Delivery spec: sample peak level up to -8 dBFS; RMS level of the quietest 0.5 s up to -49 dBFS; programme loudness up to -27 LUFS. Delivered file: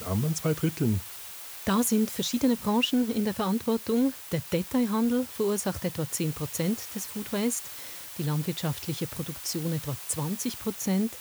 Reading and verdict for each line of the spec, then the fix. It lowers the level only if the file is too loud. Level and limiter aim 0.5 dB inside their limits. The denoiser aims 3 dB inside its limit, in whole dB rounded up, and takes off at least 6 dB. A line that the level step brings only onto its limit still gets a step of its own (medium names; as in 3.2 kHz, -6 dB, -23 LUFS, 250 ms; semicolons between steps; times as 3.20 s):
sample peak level -13.5 dBFS: pass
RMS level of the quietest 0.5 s -42 dBFS: fail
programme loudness -28.5 LUFS: pass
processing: noise reduction 10 dB, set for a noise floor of -42 dBFS